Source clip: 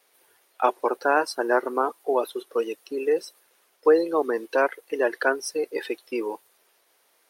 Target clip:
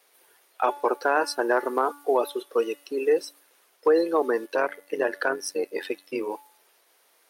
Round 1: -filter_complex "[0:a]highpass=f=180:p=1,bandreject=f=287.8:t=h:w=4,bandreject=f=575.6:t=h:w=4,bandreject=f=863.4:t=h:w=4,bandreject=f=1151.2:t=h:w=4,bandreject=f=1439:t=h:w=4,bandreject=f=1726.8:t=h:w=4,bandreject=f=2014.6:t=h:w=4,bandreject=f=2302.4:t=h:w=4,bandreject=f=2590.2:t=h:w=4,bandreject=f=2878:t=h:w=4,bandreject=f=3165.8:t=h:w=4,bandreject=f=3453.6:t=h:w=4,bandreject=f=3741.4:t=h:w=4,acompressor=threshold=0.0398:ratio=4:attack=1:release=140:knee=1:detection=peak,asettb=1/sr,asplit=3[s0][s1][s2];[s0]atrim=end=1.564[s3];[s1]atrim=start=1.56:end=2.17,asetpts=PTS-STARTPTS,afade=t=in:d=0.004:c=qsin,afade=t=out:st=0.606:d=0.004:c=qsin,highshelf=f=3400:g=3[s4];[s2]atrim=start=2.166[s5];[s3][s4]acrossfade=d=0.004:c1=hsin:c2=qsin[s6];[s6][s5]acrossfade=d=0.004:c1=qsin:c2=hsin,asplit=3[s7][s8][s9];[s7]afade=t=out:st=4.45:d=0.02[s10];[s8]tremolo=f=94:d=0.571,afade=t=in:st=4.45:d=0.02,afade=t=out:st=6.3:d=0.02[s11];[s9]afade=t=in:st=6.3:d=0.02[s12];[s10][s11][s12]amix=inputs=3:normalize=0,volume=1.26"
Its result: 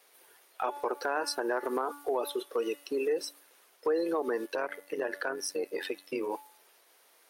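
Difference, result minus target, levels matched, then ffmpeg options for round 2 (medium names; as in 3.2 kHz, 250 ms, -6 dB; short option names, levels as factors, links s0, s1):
compression: peak gain reduction +9 dB
-filter_complex "[0:a]highpass=f=180:p=1,bandreject=f=287.8:t=h:w=4,bandreject=f=575.6:t=h:w=4,bandreject=f=863.4:t=h:w=4,bandreject=f=1151.2:t=h:w=4,bandreject=f=1439:t=h:w=4,bandreject=f=1726.8:t=h:w=4,bandreject=f=2014.6:t=h:w=4,bandreject=f=2302.4:t=h:w=4,bandreject=f=2590.2:t=h:w=4,bandreject=f=2878:t=h:w=4,bandreject=f=3165.8:t=h:w=4,bandreject=f=3453.6:t=h:w=4,bandreject=f=3741.4:t=h:w=4,acompressor=threshold=0.158:ratio=4:attack=1:release=140:knee=1:detection=peak,asettb=1/sr,asplit=3[s0][s1][s2];[s0]atrim=end=1.564[s3];[s1]atrim=start=1.56:end=2.17,asetpts=PTS-STARTPTS,afade=t=in:d=0.004:c=qsin,afade=t=out:st=0.606:d=0.004:c=qsin,highshelf=f=3400:g=3[s4];[s2]atrim=start=2.166[s5];[s3][s4]acrossfade=d=0.004:c1=hsin:c2=qsin[s6];[s6][s5]acrossfade=d=0.004:c1=qsin:c2=hsin,asplit=3[s7][s8][s9];[s7]afade=t=out:st=4.45:d=0.02[s10];[s8]tremolo=f=94:d=0.571,afade=t=in:st=4.45:d=0.02,afade=t=out:st=6.3:d=0.02[s11];[s9]afade=t=in:st=6.3:d=0.02[s12];[s10][s11][s12]amix=inputs=3:normalize=0,volume=1.26"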